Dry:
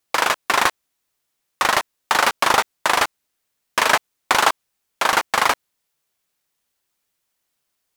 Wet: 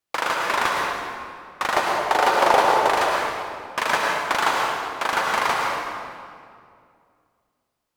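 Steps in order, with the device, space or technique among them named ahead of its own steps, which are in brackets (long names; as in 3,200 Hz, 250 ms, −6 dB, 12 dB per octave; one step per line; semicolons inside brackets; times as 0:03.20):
0:01.74–0:02.90: flat-topped bell 540 Hz +8 dB
swimming-pool hall (convolution reverb RT60 2.3 s, pre-delay 98 ms, DRR −1.5 dB; high-shelf EQ 4,200 Hz −6.5 dB)
level −5.5 dB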